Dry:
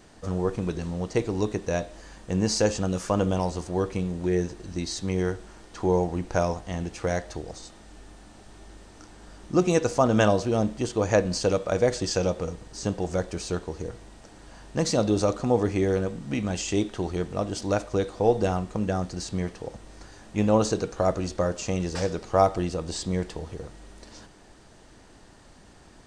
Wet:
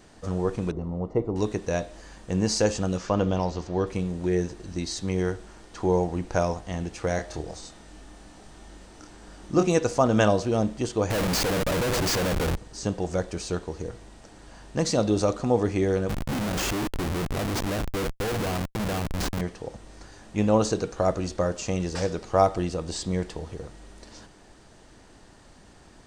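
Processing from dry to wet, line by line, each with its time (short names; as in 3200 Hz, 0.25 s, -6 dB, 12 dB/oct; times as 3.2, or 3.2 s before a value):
0.71–1.36 polynomial smoothing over 65 samples
2.97–3.87 LPF 6000 Hz 24 dB/oct
7.16–9.66 doubler 26 ms -4.5 dB
11.1–12.57 Schmitt trigger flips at -34.5 dBFS
16.09–19.41 Schmitt trigger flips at -32.5 dBFS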